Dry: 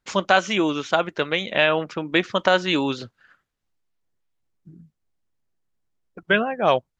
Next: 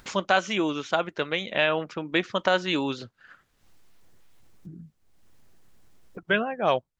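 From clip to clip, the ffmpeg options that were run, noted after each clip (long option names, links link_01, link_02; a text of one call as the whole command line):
ffmpeg -i in.wav -af "acompressor=mode=upward:threshold=-29dB:ratio=2.5,volume=-4.5dB" out.wav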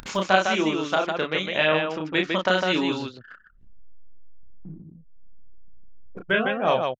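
ffmpeg -i in.wav -af "acompressor=mode=upward:threshold=-37dB:ratio=2.5,aecho=1:1:32.07|154.5:0.708|0.631,anlmdn=0.1" out.wav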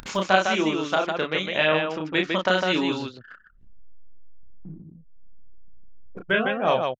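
ffmpeg -i in.wav -af anull out.wav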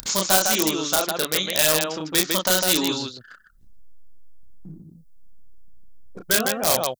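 ffmpeg -i in.wav -filter_complex "[0:a]asplit=2[link_01][link_02];[link_02]aeval=exprs='(mod(5.62*val(0)+1,2)-1)/5.62':channel_layout=same,volume=-5.5dB[link_03];[link_01][link_03]amix=inputs=2:normalize=0,aexciter=amount=6.4:drive=3.1:freq=3800,volume=-4dB" out.wav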